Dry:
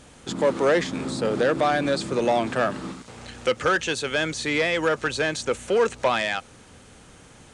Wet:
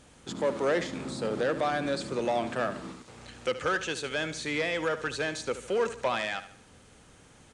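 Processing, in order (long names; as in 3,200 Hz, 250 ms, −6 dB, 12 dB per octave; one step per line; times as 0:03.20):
repeating echo 74 ms, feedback 41%, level −13 dB
level −7 dB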